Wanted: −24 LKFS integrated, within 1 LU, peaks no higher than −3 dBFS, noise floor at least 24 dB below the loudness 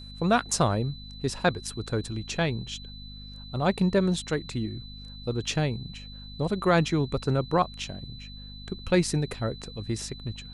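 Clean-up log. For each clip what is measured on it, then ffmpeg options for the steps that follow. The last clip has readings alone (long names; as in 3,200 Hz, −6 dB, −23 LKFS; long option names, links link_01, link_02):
mains hum 50 Hz; hum harmonics up to 250 Hz; level of the hum −41 dBFS; interfering tone 4,000 Hz; level of the tone −45 dBFS; integrated loudness −28.0 LKFS; sample peak −10.0 dBFS; target loudness −24.0 LKFS
→ -af "bandreject=frequency=50:width_type=h:width=4,bandreject=frequency=100:width_type=h:width=4,bandreject=frequency=150:width_type=h:width=4,bandreject=frequency=200:width_type=h:width=4,bandreject=frequency=250:width_type=h:width=4"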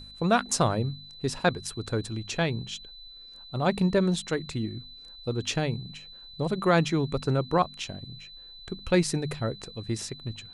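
mains hum none found; interfering tone 4,000 Hz; level of the tone −45 dBFS
→ -af "bandreject=frequency=4000:width=30"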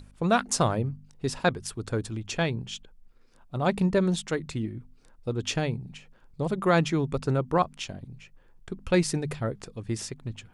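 interfering tone none found; integrated loudness −28.5 LKFS; sample peak −10.0 dBFS; target loudness −24.0 LKFS
→ -af "volume=4.5dB"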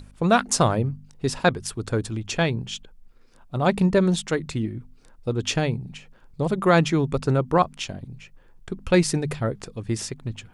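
integrated loudness −24.0 LKFS; sample peak −5.5 dBFS; background noise floor −52 dBFS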